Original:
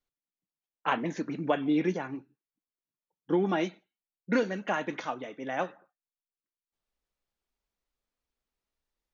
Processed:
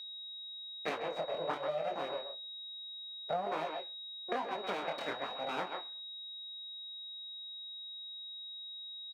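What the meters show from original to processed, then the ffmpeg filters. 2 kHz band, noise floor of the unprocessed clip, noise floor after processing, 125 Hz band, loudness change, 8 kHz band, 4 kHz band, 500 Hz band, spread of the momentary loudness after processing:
−7.0 dB, below −85 dBFS, −46 dBFS, −16.0 dB, −8.5 dB, can't be measured, +9.5 dB, −5.0 dB, 7 LU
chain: -filter_complex "[0:a]adynamicsmooth=sensitivity=6:basefreq=4200,aeval=exprs='abs(val(0))':channel_layout=same,equalizer=frequency=660:width=0.94:gain=7,asplit=2[link_01][link_02];[link_02]adelay=130,highpass=300,lowpass=3400,asoftclip=type=hard:threshold=-20dB,volume=-8dB[link_03];[link_01][link_03]amix=inputs=2:normalize=0,flanger=delay=18.5:depth=7:speed=1.1,aeval=exprs='val(0)+0.00631*sin(2*PI*3800*n/s)':channel_layout=same,acompressor=threshold=-33dB:ratio=6,highpass=300,highshelf=frequency=4100:gain=-8,volume=4.5dB"

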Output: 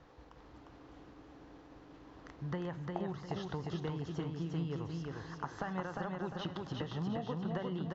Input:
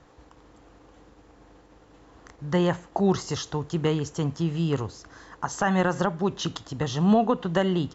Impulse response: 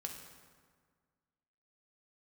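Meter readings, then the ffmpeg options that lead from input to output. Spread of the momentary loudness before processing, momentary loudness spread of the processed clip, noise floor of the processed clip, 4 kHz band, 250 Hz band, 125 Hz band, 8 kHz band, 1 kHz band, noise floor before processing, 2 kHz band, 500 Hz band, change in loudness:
11 LU, 18 LU, −57 dBFS, −14.0 dB, −14.0 dB, −11.5 dB, can't be measured, −14.0 dB, −55 dBFS, −14.0 dB, −15.0 dB, −14.0 dB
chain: -filter_complex "[0:a]acrossover=split=3200[link_01][link_02];[link_02]acompressor=threshold=-47dB:ratio=4:attack=1:release=60[link_03];[link_01][link_03]amix=inputs=2:normalize=0,lowpass=frequency=5800:width=0.5412,lowpass=frequency=5800:width=1.3066,acompressor=threshold=-32dB:ratio=10,aecho=1:1:353|706|1059|1412|1765:0.708|0.276|0.108|0.042|0.0164,asplit=2[link_04][link_05];[1:a]atrim=start_sample=2205,lowpass=6300[link_06];[link_05][link_06]afir=irnorm=-1:irlink=0,volume=-9.5dB[link_07];[link_04][link_07]amix=inputs=2:normalize=0,volume=-6dB"

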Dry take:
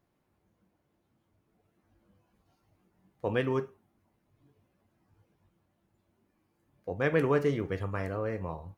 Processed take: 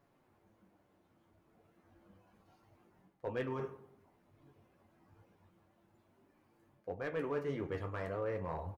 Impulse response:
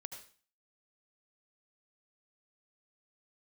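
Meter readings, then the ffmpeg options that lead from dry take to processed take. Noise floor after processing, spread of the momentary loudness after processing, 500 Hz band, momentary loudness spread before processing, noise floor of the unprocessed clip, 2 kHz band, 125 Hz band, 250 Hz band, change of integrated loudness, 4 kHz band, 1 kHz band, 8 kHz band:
−73 dBFS, 9 LU, −8.0 dB, 13 LU, −76 dBFS, −10.0 dB, −9.5 dB, −9.5 dB, −9.0 dB, −10.0 dB, −6.0 dB, can't be measured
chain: -filter_complex "[0:a]areverse,acompressor=threshold=-40dB:ratio=6,areverse,lowshelf=frequency=330:gain=-8,asoftclip=type=hard:threshold=-38dB,highshelf=frequency=2500:gain=-9,flanger=delay=7:depth=6.2:regen=-42:speed=0.32:shape=triangular,asplit=2[link_01][link_02];[link_02]adelay=98,lowpass=frequency=1500:poles=1,volume=-14dB,asplit=2[link_03][link_04];[link_04]adelay=98,lowpass=frequency=1500:poles=1,volume=0.49,asplit=2[link_05][link_06];[link_06]adelay=98,lowpass=frequency=1500:poles=1,volume=0.49,asplit=2[link_07][link_08];[link_08]adelay=98,lowpass=frequency=1500:poles=1,volume=0.49,asplit=2[link_09][link_10];[link_10]adelay=98,lowpass=frequency=1500:poles=1,volume=0.49[link_11];[link_01][link_03][link_05][link_07][link_09][link_11]amix=inputs=6:normalize=0,volume=12dB"

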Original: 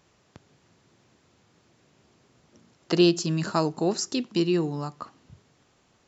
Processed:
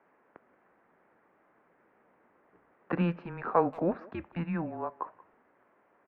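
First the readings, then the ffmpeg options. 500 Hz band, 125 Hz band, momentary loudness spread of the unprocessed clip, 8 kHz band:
−6.5 dB, −6.0 dB, 15 LU, can't be measured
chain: -filter_complex "[0:a]highpass=frequency=480:width_type=q:width=0.5412,highpass=frequency=480:width_type=q:width=1.307,lowpass=frequency=2100:width_type=q:width=0.5176,lowpass=frequency=2100:width_type=q:width=0.7071,lowpass=frequency=2100:width_type=q:width=1.932,afreqshift=-170,asplit=2[link_01][link_02];[link_02]adelay=180,highpass=300,lowpass=3400,asoftclip=type=hard:threshold=-22.5dB,volume=-21dB[link_03];[link_01][link_03]amix=inputs=2:normalize=0,volume=2dB"

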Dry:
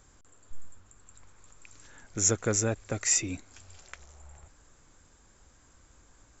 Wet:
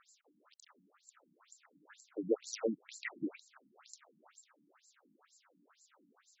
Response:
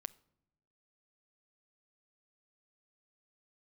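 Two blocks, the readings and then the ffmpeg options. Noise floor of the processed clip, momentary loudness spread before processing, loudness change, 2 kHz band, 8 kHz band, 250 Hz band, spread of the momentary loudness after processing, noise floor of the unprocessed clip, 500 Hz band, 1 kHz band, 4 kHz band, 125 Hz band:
−75 dBFS, 15 LU, −12.0 dB, −9.5 dB, can't be measured, −5.0 dB, 21 LU, −61 dBFS, −4.5 dB, −13.5 dB, −14.0 dB, −23.5 dB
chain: -af "equalizer=frequency=1300:width=6.9:gain=6.5,acrusher=bits=4:mode=log:mix=0:aa=0.000001,afftfilt=real='re*between(b*sr/1024,220*pow(5800/220,0.5+0.5*sin(2*PI*2.1*pts/sr))/1.41,220*pow(5800/220,0.5+0.5*sin(2*PI*2.1*pts/sr))*1.41)':imag='im*between(b*sr/1024,220*pow(5800/220,0.5+0.5*sin(2*PI*2.1*pts/sr))/1.41,220*pow(5800/220,0.5+0.5*sin(2*PI*2.1*pts/sr))*1.41)':win_size=1024:overlap=0.75,volume=1.5dB"

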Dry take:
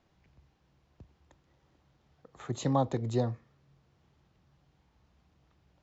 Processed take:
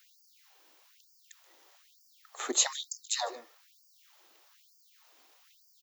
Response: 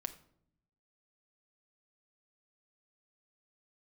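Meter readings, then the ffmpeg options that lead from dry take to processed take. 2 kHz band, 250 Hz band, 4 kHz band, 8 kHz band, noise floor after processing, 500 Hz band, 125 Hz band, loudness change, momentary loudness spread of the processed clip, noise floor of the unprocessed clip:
+9.5 dB, −12.5 dB, +15.0 dB, can't be measured, −65 dBFS, −8.0 dB, below −40 dB, +1.0 dB, 13 LU, −71 dBFS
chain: -af "aemphasis=mode=production:type=riaa,aecho=1:1:151:0.0841,afftfilt=real='re*gte(b*sr/1024,240*pow(4600/240,0.5+0.5*sin(2*PI*1.1*pts/sr)))':imag='im*gte(b*sr/1024,240*pow(4600/240,0.5+0.5*sin(2*PI*1.1*pts/sr)))':win_size=1024:overlap=0.75,volume=8.5dB"

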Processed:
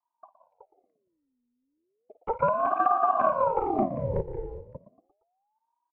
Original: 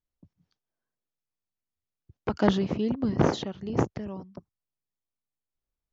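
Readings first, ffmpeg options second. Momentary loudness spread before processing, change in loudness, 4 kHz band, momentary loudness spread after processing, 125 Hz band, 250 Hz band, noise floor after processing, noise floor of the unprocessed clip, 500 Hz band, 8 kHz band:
13 LU, +2.0 dB, below −20 dB, 16 LU, −6.0 dB, −8.5 dB, −81 dBFS, below −85 dBFS, +2.5 dB, can't be measured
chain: -filter_complex "[0:a]tiltshelf=frequency=1200:gain=10,asplit=2[link_01][link_02];[link_02]adelay=116,lowpass=frequency=1500:poles=1,volume=-13.5dB,asplit=2[link_03][link_04];[link_04]adelay=116,lowpass=frequency=1500:poles=1,volume=0.45,asplit=2[link_05][link_06];[link_06]adelay=116,lowpass=frequency=1500:poles=1,volume=0.45,asplit=2[link_07][link_08];[link_08]adelay=116,lowpass=frequency=1500:poles=1,volume=0.45[link_09];[link_03][link_05][link_07][link_09]amix=inputs=4:normalize=0[link_10];[link_01][link_10]amix=inputs=2:normalize=0,acrossover=split=83|300|1800[link_11][link_12][link_13][link_14];[link_11]acompressor=threshold=-41dB:ratio=4[link_15];[link_12]acompressor=threshold=-19dB:ratio=4[link_16];[link_13]acompressor=threshold=-22dB:ratio=4[link_17];[link_14]acompressor=threshold=-55dB:ratio=4[link_18];[link_15][link_16][link_17][link_18]amix=inputs=4:normalize=0,acrusher=bits=8:mode=log:mix=0:aa=0.000001,firequalizer=gain_entry='entry(170,0);entry(270,6);entry(400,-21);entry(650,5);entry(940,-23);entry(1600,3);entry(3500,-16);entry(6600,-22);entry(9400,-29)':delay=0.05:min_phase=1,asplit=2[link_19][link_20];[link_20]aecho=0:1:51|179|200|373:0.211|0.112|0.158|0.708[link_21];[link_19][link_21]amix=inputs=2:normalize=0,aeval=exprs='val(0)*sin(2*PI*600*n/s+600*0.6/0.34*sin(2*PI*0.34*n/s))':channel_layout=same,volume=-4dB"

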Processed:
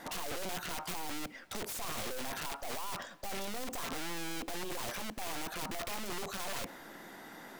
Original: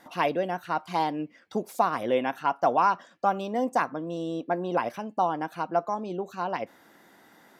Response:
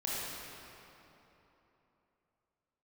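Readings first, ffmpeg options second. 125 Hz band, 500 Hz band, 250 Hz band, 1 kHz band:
−9.0 dB, −15.0 dB, −12.0 dB, −16.0 dB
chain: -filter_complex "[0:a]aeval=exprs='(tanh(79.4*val(0)+0.5)-tanh(0.5))/79.4':channel_layout=same,aeval=exprs='(mod(106*val(0)+1,2)-1)/106':channel_layout=same,asplit=2[link_01][link_02];[1:a]atrim=start_sample=2205,adelay=107[link_03];[link_02][link_03]afir=irnorm=-1:irlink=0,volume=-27.5dB[link_04];[link_01][link_04]amix=inputs=2:normalize=0,volume=8.5dB"

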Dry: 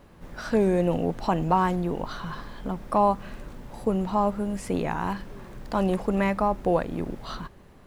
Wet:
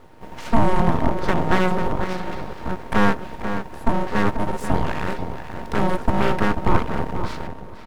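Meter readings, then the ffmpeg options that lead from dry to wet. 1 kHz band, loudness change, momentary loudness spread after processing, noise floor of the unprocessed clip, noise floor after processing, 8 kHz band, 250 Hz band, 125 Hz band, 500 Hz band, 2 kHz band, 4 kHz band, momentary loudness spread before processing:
+3.0 dB, +3.0 dB, 11 LU, −51 dBFS, −37 dBFS, +4.0 dB, +3.0 dB, +5.5 dB, +1.0 dB, +9.5 dB, +7.5 dB, 16 LU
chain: -filter_complex "[0:a]aeval=exprs='val(0)*sin(2*PI*460*n/s)':channel_layout=same,lowshelf=frequency=250:gain=11.5,asplit=2[link_01][link_02];[link_02]adelay=488,lowpass=frequency=1800:poles=1,volume=-8dB,asplit=2[link_03][link_04];[link_04]adelay=488,lowpass=frequency=1800:poles=1,volume=0.17,asplit=2[link_05][link_06];[link_06]adelay=488,lowpass=frequency=1800:poles=1,volume=0.17[link_07];[link_03][link_05][link_07]amix=inputs=3:normalize=0[link_08];[link_01][link_08]amix=inputs=2:normalize=0,aeval=exprs='abs(val(0))':channel_layout=same,volume=4.5dB"

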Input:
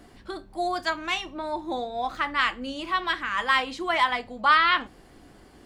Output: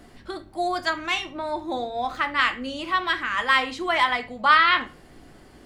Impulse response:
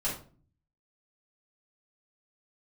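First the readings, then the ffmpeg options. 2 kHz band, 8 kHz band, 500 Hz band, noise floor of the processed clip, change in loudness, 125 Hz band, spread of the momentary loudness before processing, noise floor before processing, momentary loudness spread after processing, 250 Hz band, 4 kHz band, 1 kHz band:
+3.0 dB, +2.0 dB, +2.0 dB, −50 dBFS, +2.5 dB, +3.0 dB, 13 LU, −53 dBFS, 13 LU, +2.0 dB, +2.0 dB, +2.0 dB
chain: -filter_complex "[0:a]asplit=2[link_01][link_02];[link_02]equalizer=frequency=125:width_type=o:width=1:gain=5,equalizer=frequency=1000:width_type=o:width=1:gain=-5,equalizer=frequency=2000:width_type=o:width=1:gain=7[link_03];[1:a]atrim=start_sample=2205[link_04];[link_03][link_04]afir=irnorm=-1:irlink=0,volume=-16dB[link_05];[link_01][link_05]amix=inputs=2:normalize=0,volume=1dB"

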